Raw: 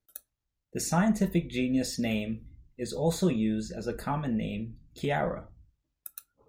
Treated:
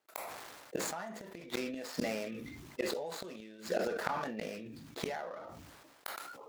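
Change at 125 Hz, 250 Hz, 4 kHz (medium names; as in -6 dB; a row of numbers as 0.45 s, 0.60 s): -18.5 dB, -14.0 dB, -4.0 dB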